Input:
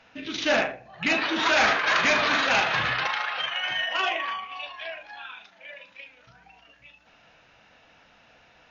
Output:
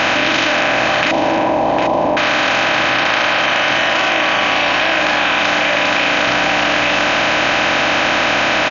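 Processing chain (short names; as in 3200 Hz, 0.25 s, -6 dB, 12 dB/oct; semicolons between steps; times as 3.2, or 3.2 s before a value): per-bin compression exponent 0.2; 1.11–2.17 elliptic low-pass 970 Hz; on a send: feedback echo 0.756 s, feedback 34%, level -13 dB; on the sum: fast leveller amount 100%; gain -1.5 dB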